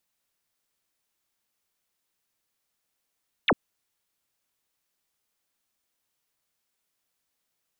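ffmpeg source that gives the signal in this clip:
-f lavfi -i "aevalsrc='0.141*clip(t/0.002,0,1)*clip((0.05-t)/0.002,0,1)*sin(2*PI*4100*0.05/log(160/4100)*(exp(log(160/4100)*t/0.05)-1))':d=0.05:s=44100"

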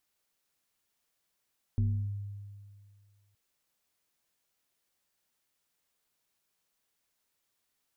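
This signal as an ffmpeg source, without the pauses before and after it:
-f lavfi -i "aevalsrc='0.0708*pow(10,-3*t/2.04)*sin(2*PI*101*t+0.56*clip(1-t/0.35,0,1)*sin(2*PI*1.32*101*t))':d=1.57:s=44100"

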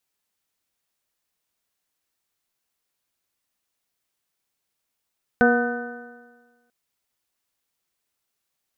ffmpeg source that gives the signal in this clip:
-f lavfi -i "aevalsrc='0.15*pow(10,-3*t/1.4)*sin(2*PI*239.33*t)+0.15*pow(10,-3*t/1.4)*sin(2*PI*480.67*t)+0.106*pow(10,-3*t/1.4)*sin(2*PI*725.98*t)+0.0178*pow(10,-3*t/1.4)*sin(2*PI*977.18*t)+0.0335*pow(10,-3*t/1.4)*sin(2*PI*1236.12*t)+0.141*pow(10,-3*t/1.4)*sin(2*PI*1504.54*t)+0.0188*pow(10,-3*t/1.4)*sin(2*PI*1784.08*t)':d=1.29:s=44100"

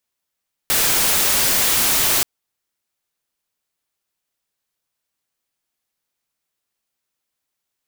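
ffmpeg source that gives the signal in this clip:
-f lavfi -i "anoisesrc=c=white:a=0.245:d=1.53:r=44100:seed=1"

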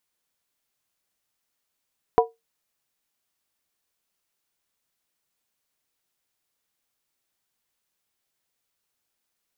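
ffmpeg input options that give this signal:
-f lavfi -i "aevalsrc='0.266*pow(10,-3*t/0.19)*sin(2*PI*457*t)+0.224*pow(10,-3*t/0.15)*sin(2*PI*728.5*t)+0.188*pow(10,-3*t/0.13)*sin(2*PI*976.2*t)':d=0.63:s=44100"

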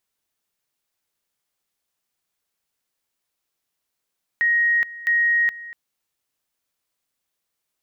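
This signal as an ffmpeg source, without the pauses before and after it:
-f lavfi -i "aevalsrc='pow(10,(-15.5-18*gte(mod(t,0.66),0.42))/20)*sin(2*PI*1880*t)':d=1.32:s=44100"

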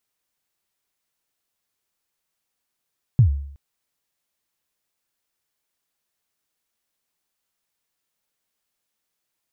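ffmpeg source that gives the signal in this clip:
-f lavfi -i "aevalsrc='0.422*pow(10,-3*t/0.65)*sin(2*PI*(140*0.102/log(70/140)*(exp(log(70/140)*min(t,0.102)/0.102)-1)+70*max(t-0.102,0)))':d=0.37:s=44100"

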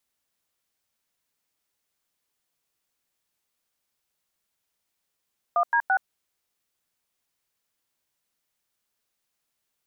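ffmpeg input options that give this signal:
-f lavfi -i "aevalsrc='0.0891*clip(min(mod(t,0.169),0.073-mod(t,0.169))/0.002,0,1)*(eq(floor(t/0.169),0)*(sin(2*PI*697*mod(t,0.169))+sin(2*PI*1209*mod(t,0.169)))+eq(floor(t/0.169),1)*(sin(2*PI*941*mod(t,0.169))+sin(2*PI*1633*mod(t,0.169)))+eq(floor(t/0.169),2)*(sin(2*PI*770*mod(t,0.169))+sin(2*PI*1477*mod(t,0.169))))':d=0.507:s=44100"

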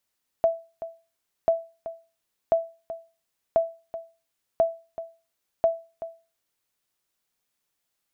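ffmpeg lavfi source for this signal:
-f lavfi -i "aevalsrc='0.237*(sin(2*PI*662*mod(t,1.04))*exp(-6.91*mod(t,1.04)/0.32)+0.2*sin(2*PI*662*max(mod(t,1.04)-0.38,0))*exp(-6.91*max(mod(t,1.04)-0.38,0)/0.32))':d=6.24:s=44100"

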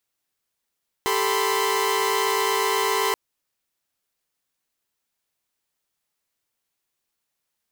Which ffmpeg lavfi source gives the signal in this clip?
-f lavfi -i "aevalsrc='0.0668*((2*mod(392*t,1)-1)+(2*mod(440*t,1)-1)+(2*mod(987.77*t,1)-1)+(2*mod(1046.5*t,1)-1))':d=2.08:s=44100"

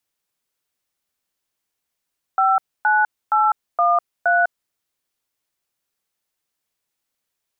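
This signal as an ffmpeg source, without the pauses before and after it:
-f lavfi -i "aevalsrc='0.158*clip(min(mod(t,0.469),0.201-mod(t,0.469))/0.002,0,1)*(eq(floor(t/0.469),0)*(sin(2*PI*770*mod(t,0.469))+sin(2*PI*1336*mod(t,0.469)))+eq(floor(t/0.469),1)*(sin(2*PI*852*mod(t,0.469))+sin(2*PI*1477*mod(t,0.469)))+eq(floor(t/0.469),2)*(sin(2*PI*852*mod(t,0.469))+sin(2*PI*1336*mod(t,0.469)))+eq(floor(t/0.469),3)*(sin(2*PI*697*mod(t,0.469))+sin(2*PI*1209*mod(t,0.469)))+eq(floor(t/0.469),4)*(sin(2*PI*697*mod(t,0.469))+sin(2*PI*1477*mod(t,0.469))))':d=2.345:s=44100"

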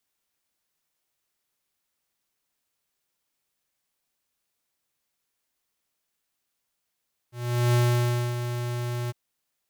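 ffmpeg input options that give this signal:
-f lavfi -i "aevalsrc='0.1*(2*lt(mod(121*t,1),0.5)-1)':d=1.805:s=44100,afade=t=in:d=0.422,afade=t=out:st=0.422:d=0.601:silence=0.335,afade=t=out:st=1.78:d=0.025"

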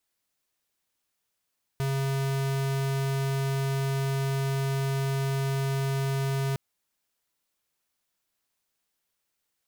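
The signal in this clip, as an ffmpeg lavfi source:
-f lavfi -i "aevalsrc='0.0422*(2*lt(mod(136*t,1),0.5)-1)':d=4.76:s=44100"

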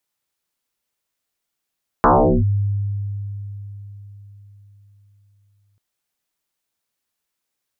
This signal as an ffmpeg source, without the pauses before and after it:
-f lavfi -i "aevalsrc='0.376*pow(10,-3*t/4.35)*sin(2*PI*101*t+9.5*clip(1-t/0.4,0,1)*sin(2*PI*1.35*101*t))':d=3.74:s=44100"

